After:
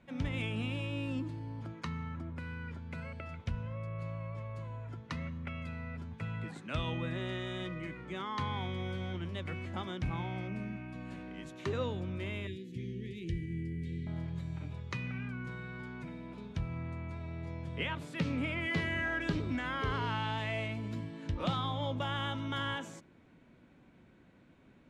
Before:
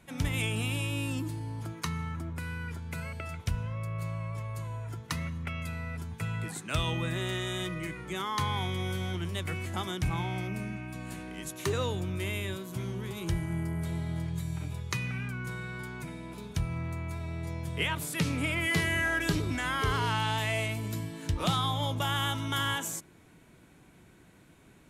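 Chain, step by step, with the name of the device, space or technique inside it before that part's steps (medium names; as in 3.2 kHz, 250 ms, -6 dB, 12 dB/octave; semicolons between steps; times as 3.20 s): 12.47–14.07 s: Chebyshev band-stop 480–1800 Hz, order 5; inside a cardboard box (low-pass 3.6 kHz 12 dB/octave; small resonant body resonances 240/540 Hz, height 7 dB); trim -5.5 dB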